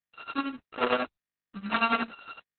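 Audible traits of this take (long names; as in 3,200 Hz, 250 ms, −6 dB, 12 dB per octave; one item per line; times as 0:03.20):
a buzz of ramps at a fixed pitch in blocks of 32 samples
tremolo triangle 11 Hz, depth 90%
a quantiser's noise floor 10 bits, dither none
Opus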